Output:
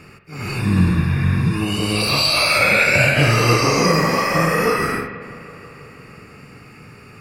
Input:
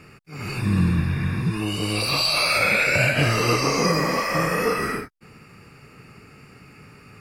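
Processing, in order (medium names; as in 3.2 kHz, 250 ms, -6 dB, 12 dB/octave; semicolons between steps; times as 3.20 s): bucket-brigade echo 162 ms, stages 4096, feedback 79%, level -19.5 dB; spring tank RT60 1 s, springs 43 ms, chirp 50 ms, DRR 7.5 dB; trim +4 dB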